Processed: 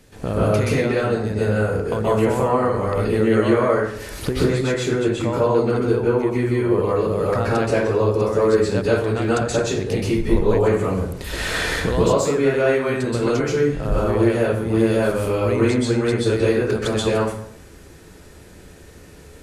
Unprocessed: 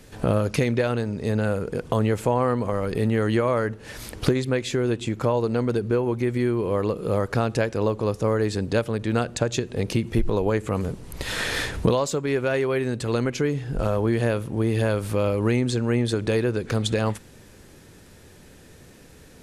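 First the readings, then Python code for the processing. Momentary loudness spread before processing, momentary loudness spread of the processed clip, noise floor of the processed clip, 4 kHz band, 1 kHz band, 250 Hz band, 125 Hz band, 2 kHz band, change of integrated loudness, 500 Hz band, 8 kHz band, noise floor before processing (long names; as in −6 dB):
4 LU, 4 LU, −44 dBFS, +2.5 dB, +5.0 dB, +4.0 dB, +2.0 dB, +4.5 dB, +4.5 dB, +5.5 dB, +3.5 dB, −49 dBFS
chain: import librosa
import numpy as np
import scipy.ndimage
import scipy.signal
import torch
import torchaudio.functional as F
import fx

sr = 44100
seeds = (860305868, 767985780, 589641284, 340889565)

y = fx.rev_plate(x, sr, seeds[0], rt60_s=0.65, hf_ratio=0.6, predelay_ms=115, drr_db=-7.5)
y = F.gain(torch.from_numpy(y), -3.5).numpy()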